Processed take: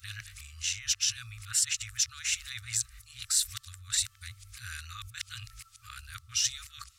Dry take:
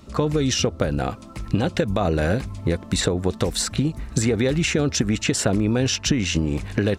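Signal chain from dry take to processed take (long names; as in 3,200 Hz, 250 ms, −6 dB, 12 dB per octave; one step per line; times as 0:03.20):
played backwards from end to start
first-order pre-emphasis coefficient 0.9
brick-wall band-stop 120–1,100 Hz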